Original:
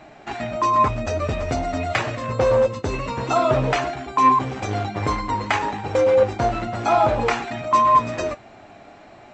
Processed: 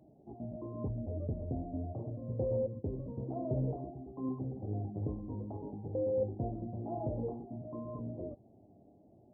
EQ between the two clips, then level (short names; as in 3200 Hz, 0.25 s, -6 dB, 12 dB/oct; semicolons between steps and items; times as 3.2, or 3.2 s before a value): Gaussian blur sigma 18 samples; HPF 67 Hz; -8.5 dB